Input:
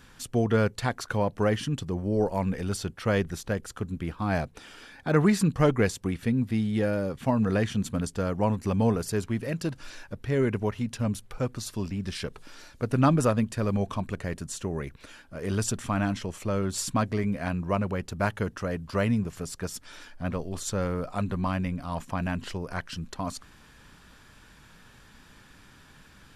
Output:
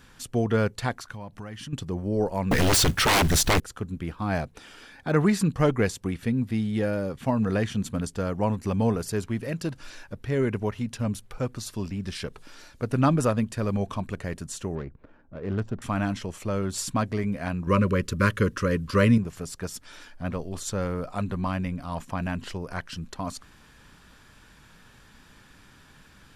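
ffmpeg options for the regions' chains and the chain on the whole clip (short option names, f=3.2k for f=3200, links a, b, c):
-filter_complex "[0:a]asettb=1/sr,asplit=3[a][b][c];[a]atrim=end=0.974[d];[b]atrim=start=0.97:end=1.73,asetpts=PTS-STARTPTS,afade=t=in:d=0.004:c=qsin,afade=t=out:st=0.756:d=0.004:c=qsin,equalizer=f=460:w=1.7:g=-8.5,acompressor=threshold=-36dB:ratio=4:attack=3.2:release=140:knee=1:detection=peak[e];[c]atrim=start=1.726[f];[d][e]acrossfade=d=0.004:c1=hsin:c2=qsin[g];[g][f]acrossfade=d=0.004:c1=qsin:c2=hsin,asettb=1/sr,asplit=3[h][i][j];[h]atrim=end=2.514[k];[i]atrim=start=2.51:end=3.6,asetpts=PTS-STARTPTS,afade=t=in:d=0.004:c=qsin,afade=t=out:st=1.086:d=0.004:c=qsin,equalizer=f=540:t=o:w=2.3:g=-9,aeval=exprs='0.15*sin(PI/2*7.94*val(0)/0.15)':c=same,acrusher=bits=4:mode=log:mix=0:aa=0.000001[l];[j]atrim=start=3.596[m];[k][l]acrossfade=d=0.004:c1=hsin:c2=qsin[n];[n][m]acrossfade=d=0.004:c1=qsin:c2=hsin,asettb=1/sr,asplit=3[o][p][q];[o]atrim=end=14.754[r];[p]atrim=start=14.75:end=15.82,asetpts=PTS-STARTPTS,afade=t=in:d=0.004:c=qsin,afade=t=out:st=1.066:d=0.004:c=qsin,highshelf=f=2.7k:g=-9.5,adynamicsmooth=sensitivity=5:basefreq=820[s];[q]atrim=start=15.816[t];[r][s]acrossfade=d=0.004:c1=hsin:c2=qsin[u];[u][t]acrossfade=d=0.004:c1=qsin:c2=hsin,asettb=1/sr,asplit=3[v][w][x];[v]atrim=end=17.674[y];[w]atrim=start=17.67:end=19.18,asetpts=PTS-STARTPTS,afade=t=in:d=0.004:c=qsin,afade=t=out:st=1.506:d=0.004:c=qsin,asuperstop=centerf=760:order=20:qfactor=2,acontrast=66[z];[x]atrim=start=19.176[aa];[y][z]acrossfade=d=0.004:c1=hsin:c2=qsin[ab];[ab][aa]acrossfade=d=0.004:c1=qsin:c2=hsin"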